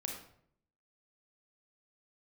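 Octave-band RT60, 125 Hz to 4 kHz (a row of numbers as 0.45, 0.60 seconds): 0.85, 0.80, 0.70, 0.60, 0.50, 0.45 seconds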